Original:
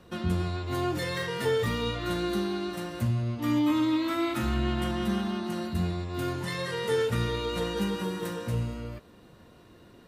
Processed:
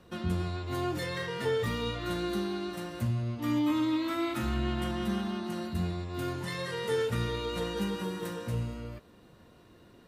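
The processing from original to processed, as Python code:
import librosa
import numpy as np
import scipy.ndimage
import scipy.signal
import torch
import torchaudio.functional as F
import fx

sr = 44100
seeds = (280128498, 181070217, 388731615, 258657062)

y = fx.high_shelf(x, sr, hz=8600.0, db=-8.0, at=(1.06, 1.64))
y = y * 10.0 ** (-3.0 / 20.0)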